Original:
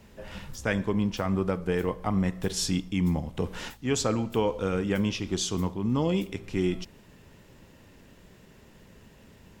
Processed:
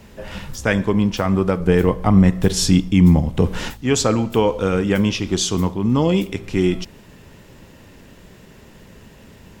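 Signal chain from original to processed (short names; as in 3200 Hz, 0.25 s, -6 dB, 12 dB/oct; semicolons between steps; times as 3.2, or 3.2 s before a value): 1.6–3.82 low shelf 310 Hz +6.5 dB; gain +9 dB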